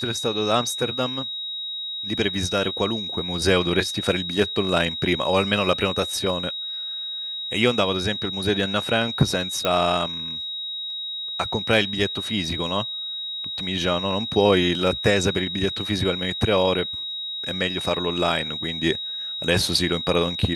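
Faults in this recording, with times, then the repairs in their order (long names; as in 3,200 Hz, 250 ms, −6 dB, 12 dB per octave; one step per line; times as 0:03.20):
whistle 3,800 Hz −28 dBFS
0:09.65: click −8 dBFS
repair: click removal
notch filter 3,800 Hz, Q 30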